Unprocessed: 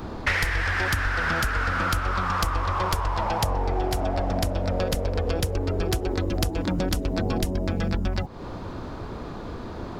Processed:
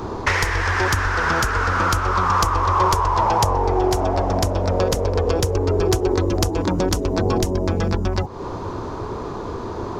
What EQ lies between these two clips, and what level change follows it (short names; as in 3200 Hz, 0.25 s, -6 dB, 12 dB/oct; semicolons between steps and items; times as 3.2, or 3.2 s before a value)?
fifteen-band EQ 100 Hz +6 dB, 400 Hz +10 dB, 1000 Hz +10 dB, 6300 Hz +9 dB; +1.0 dB